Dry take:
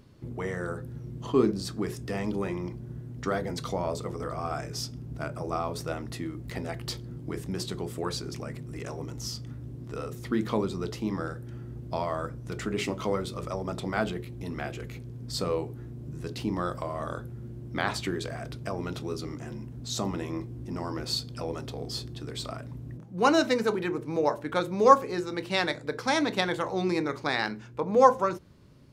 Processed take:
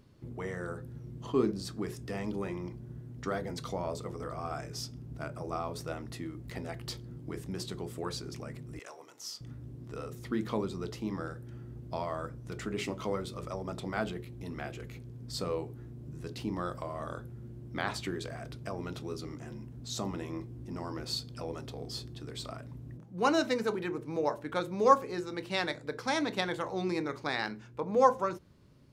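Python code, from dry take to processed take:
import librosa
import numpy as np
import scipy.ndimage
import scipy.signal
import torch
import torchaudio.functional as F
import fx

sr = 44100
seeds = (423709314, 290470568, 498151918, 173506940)

y = fx.highpass(x, sr, hz=680.0, slope=12, at=(8.79, 9.41))
y = y * librosa.db_to_amplitude(-5.0)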